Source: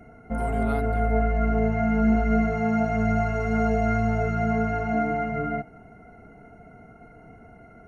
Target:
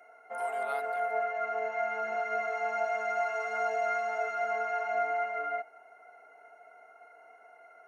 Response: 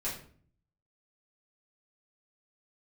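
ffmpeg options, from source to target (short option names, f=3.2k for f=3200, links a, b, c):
-af "highpass=f=590:w=0.5412,highpass=f=590:w=1.3066,volume=-2dB"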